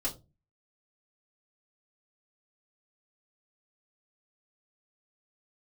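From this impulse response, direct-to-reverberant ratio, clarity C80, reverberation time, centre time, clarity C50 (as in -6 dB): -6.0 dB, 21.0 dB, 0.25 s, 14 ms, 15.0 dB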